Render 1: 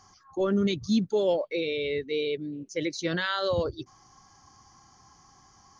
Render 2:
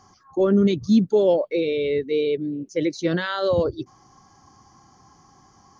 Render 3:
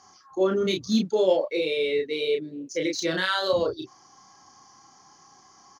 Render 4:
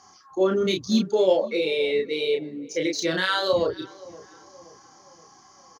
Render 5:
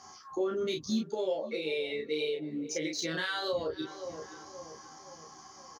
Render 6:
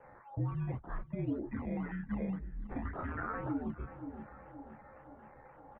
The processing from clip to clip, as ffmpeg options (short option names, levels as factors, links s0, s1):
-af "equalizer=f=290:w=0.32:g=9,volume=0.891"
-filter_complex "[0:a]aemphasis=mode=production:type=riaa,adynamicsmooth=sensitivity=1.5:basefreq=5900,asplit=2[s0][s1];[s1]adelay=32,volume=0.708[s2];[s0][s2]amix=inputs=2:normalize=0,volume=0.841"
-filter_complex "[0:a]asplit=2[s0][s1];[s1]adelay=523,lowpass=f=1900:p=1,volume=0.0944,asplit=2[s2][s3];[s3]adelay=523,lowpass=f=1900:p=1,volume=0.49,asplit=2[s4][s5];[s5]adelay=523,lowpass=f=1900:p=1,volume=0.49,asplit=2[s6][s7];[s7]adelay=523,lowpass=f=1900:p=1,volume=0.49[s8];[s0][s2][s4][s6][s8]amix=inputs=5:normalize=0,volume=1.19"
-filter_complex "[0:a]acompressor=threshold=0.0224:ratio=4,asplit=2[s0][s1];[s1]adelay=13,volume=0.631[s2];[s0][s2]amix=inputs=2:normalize=0"
-af "acrusher=samples=11:mix=1:aa=0.000001:lfo=1:lforange=6.6:lforate=1.9,highpass=f=240:t=q:w=0.5412,highpass=f=240:t=q:w=1.307,lowpass=f=2100:t=q:w=0.5176,lowpass=f=2100:t=q:w=0.7071,lowpass=f=2100:t=q:w=1.932,afreqshift=-250,volume=0.668"